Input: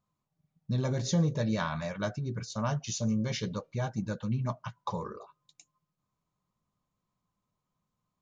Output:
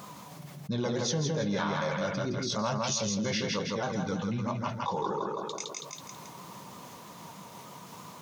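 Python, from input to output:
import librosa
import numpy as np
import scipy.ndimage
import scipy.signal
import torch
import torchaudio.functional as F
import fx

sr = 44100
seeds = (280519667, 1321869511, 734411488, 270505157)

p1 = fx.pitch_ramps(x, sr, semitones=-2.0, every_ms=319)
p2 = scipy.signal.sosfilt(scipy.signal.butter(2, 220.0, 'highpass', fs=sr, output='sos'), p1)
p3 = p2 + fx.echo_feedback(p2, sr, ms=163, feedback_pct=30, wet_db=-4.5, dry=0)
y = fx.env_flatten(p3, sr, amount_pct=70)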